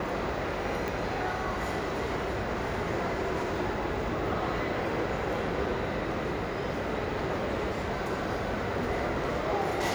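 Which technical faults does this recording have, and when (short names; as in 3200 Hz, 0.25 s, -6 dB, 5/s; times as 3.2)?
0.88 pop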